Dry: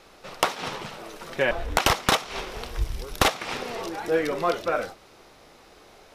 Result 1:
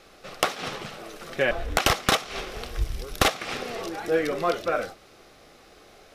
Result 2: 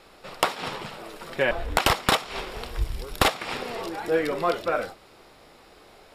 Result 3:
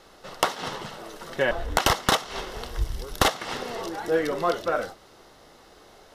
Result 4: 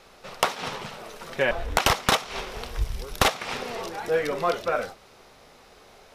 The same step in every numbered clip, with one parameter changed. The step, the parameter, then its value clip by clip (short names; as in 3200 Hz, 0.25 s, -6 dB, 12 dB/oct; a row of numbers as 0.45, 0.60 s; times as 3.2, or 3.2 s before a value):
notch, frequency: 940, 6100, 2400, 320 Hz